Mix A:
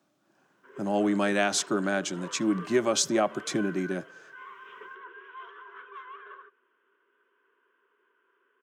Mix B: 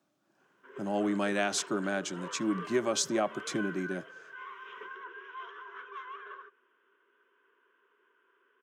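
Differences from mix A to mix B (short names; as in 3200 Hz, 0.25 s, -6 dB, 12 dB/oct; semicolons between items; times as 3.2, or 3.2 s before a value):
speech -4.5 dB; background: remove air absorption 120 m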